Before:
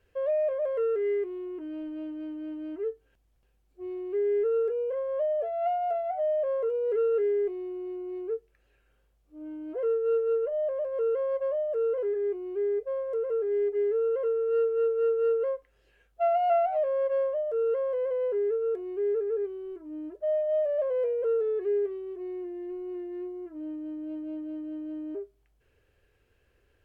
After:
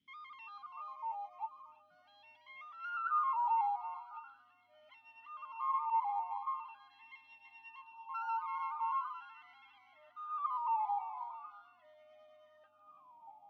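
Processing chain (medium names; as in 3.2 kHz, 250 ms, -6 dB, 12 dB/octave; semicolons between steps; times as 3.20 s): wide varispeed 1.99×; on a send: two-band feedback delay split 980 Hz, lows 634 ms, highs 333 ms, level -8 dB; on the sum: talking filter i-u 0.41 Hz; trim +2 dB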